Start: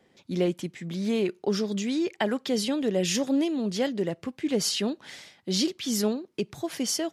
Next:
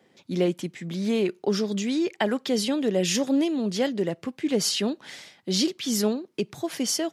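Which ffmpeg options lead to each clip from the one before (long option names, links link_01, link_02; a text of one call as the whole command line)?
ffmpeg -i in.wav -af "highpass=110,volume=2dB" out.wav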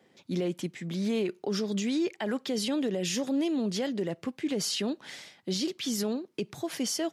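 ffmpeg -i in.wav -af "alimiter=limit=-20dB:level=0:latency=1:release=46,volume=-2dB" out.wav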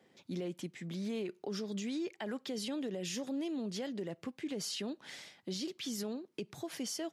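ffmpeg -i in.wav -af "acompressor=threshold=-41dB:ratio=1.5,volume=-3.5dB" out.wav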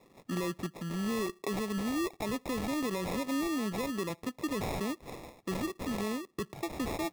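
ffmpeg -i in.wav -af "acrusher=samples=29:mix=1:aa=0.000001,volume=5dB" out.wav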